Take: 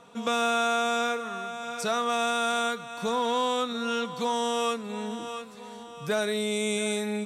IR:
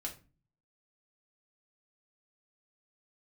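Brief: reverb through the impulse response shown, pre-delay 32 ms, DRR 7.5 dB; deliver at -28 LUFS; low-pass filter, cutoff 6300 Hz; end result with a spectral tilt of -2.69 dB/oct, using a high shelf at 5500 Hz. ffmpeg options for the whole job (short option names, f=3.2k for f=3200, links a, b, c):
-filter_complex "[0:a]lowpass=6.3k,highshelf=f=5.5k:g=6.5,asplit=2[a][b];[1:a]atrim=start_sample=2205,adelay=32[c];[b][c]afir=irnorm=-1:irlink=0,volume=-6.5dB[d];[a][d]amix=inputs=2:normalize=0,volume=-1dB"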